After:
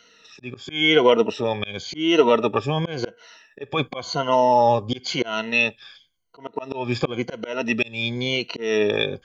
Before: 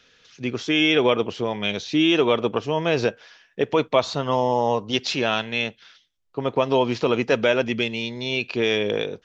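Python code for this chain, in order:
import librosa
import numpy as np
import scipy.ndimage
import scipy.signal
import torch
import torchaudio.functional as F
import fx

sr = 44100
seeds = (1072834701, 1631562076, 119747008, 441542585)

y = fx.spec_ripple(x, sr, per_octave=1.9, drift_hz=-0.94, depth_db=19)
y = fx.auto_swell(y, sr, attack_ms=270.0)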